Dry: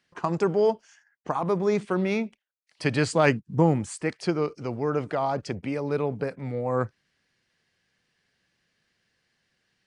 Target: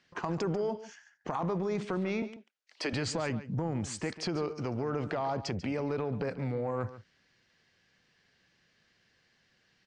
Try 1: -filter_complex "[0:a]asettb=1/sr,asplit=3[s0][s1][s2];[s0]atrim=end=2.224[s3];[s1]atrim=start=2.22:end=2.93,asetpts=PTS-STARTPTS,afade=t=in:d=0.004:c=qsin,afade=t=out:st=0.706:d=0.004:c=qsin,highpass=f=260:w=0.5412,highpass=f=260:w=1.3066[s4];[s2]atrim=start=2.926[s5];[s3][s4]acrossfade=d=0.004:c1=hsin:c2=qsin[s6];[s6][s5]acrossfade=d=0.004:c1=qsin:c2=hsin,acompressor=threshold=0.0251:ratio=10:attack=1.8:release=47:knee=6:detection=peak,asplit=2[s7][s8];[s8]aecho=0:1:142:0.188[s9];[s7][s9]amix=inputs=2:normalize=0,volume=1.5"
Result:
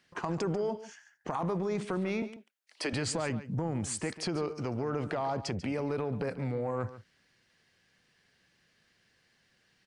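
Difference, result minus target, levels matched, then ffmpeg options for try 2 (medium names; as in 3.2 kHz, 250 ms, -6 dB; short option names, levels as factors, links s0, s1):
8 kHz band +4.0 dB
-filter_complex "[0:a]asettb=1/sr,asplit=3[s0][s1][s2];[s0]atrim=end=2.224[s3];[s1]atrim=start=2.22:end=2.93,asetpts=PTS-STARTPTS,afade=t=in:d=0.004:c=qsin,afade=t=out:st=0.706:d=0.004:c=qsin,highpass=f=260:w=0.5412,highpass=f=260:w=1.3066[s4];[s2]atrim=start=2.926[s5];[s3][s4]acrossfade=d=0.004:c1=hsin:c2=qsin[s6];[s6][s5]acrossfade=d=0.004:c1=qsin:c2=hsin,acompressor=threshold=0.0251:ratio=10:attack=1.8:release=47:knee=6:detection=peak,lowpass=f=7000:w=0.5412,lowpass=f=7000:w=1.3066,asplit=2[s7][s8];[s8]aecho=0:1:142:0.188[s9];[s7][s9]amix=inputs=2:normalize=0,volume=1.5"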